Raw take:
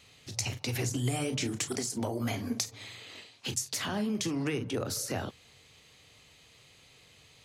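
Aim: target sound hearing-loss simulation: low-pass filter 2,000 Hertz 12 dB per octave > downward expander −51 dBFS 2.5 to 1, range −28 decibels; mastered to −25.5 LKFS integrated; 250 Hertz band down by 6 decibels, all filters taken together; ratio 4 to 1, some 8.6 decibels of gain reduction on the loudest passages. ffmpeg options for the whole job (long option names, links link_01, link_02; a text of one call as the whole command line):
ffmpeg -i in.wav -af "equalizer=frequency=250:width_type=o:gain=-7.5,acompressor=threshold=-38dB:ratio=4,lowpass=2000,agate=range=-28dB:threshold=-51dB:ratio=2.5,volume=19dB" out.wav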